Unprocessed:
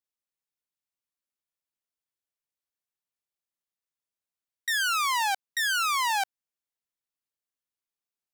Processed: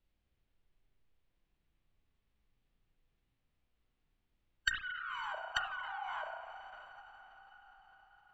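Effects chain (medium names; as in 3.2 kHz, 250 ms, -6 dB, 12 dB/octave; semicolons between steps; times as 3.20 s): low-pass 4.2 kHz 24 dB/octave; tilt EQ +4.5 dB/octave; low-pass that closes with the level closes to 390 Hz, closed at -21.5 dBFS; in parallel at -7 dB: saturation -26.5 dBFS, distortion -9 dB; on the sum: added noise brown -76 dBFS; on a send: echo that smears into a reverb 572 ms, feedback 57%, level -13.5 dB; on the sum: spring tank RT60 2.1 s, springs 33/51 ms, chirp 65 ms, DRR 1.5 dB; formant shift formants -4 st; trim -3 dB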